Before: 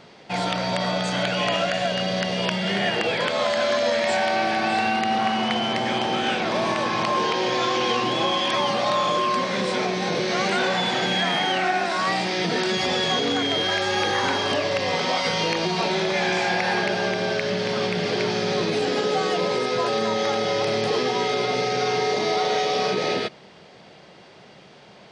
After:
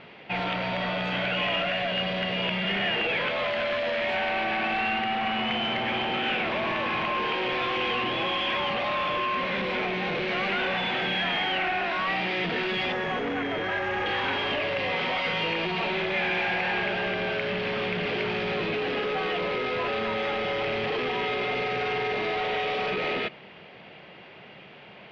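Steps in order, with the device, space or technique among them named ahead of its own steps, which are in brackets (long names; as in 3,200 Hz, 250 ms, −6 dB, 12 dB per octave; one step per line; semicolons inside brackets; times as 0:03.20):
0:12.92–0:14.06: flat-topped bell 3,400 Hz −13.5 dB 1.2 octaves
overdriven synthesiser ladder filter (soft clipping −25 dBFS, distortion −10 dB; transistor ladder low-pass 3,100 Hz, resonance 50%)
level +8.5 dB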